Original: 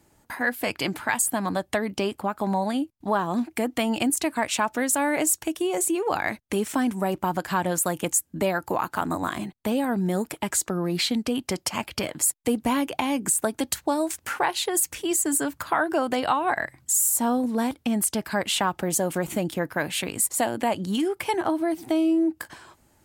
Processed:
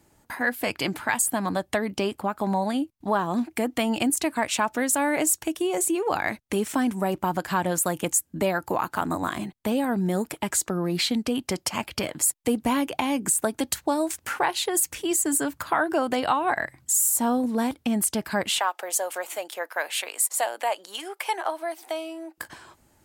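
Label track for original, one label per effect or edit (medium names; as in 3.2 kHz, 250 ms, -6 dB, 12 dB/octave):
18.590000	22.380000	high-pass 540 Hz 24 dB/octave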